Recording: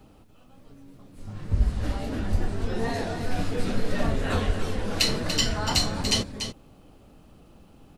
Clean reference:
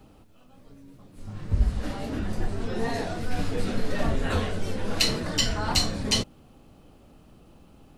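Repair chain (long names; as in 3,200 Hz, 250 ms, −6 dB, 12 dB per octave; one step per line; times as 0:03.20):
high-pass at the plosives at 0:02.31/0:04.46
echo removal 289 ms −8.5 dB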